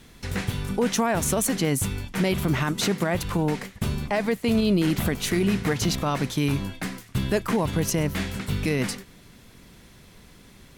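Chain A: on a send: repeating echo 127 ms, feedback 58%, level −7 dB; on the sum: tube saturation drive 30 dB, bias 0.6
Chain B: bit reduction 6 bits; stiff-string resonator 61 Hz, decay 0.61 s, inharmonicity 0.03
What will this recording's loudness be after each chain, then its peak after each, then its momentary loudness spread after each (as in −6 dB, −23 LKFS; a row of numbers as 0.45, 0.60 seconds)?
−33.0, −35.5 LKFS; −26.0, −18.5 dBFS; 16, 8 LU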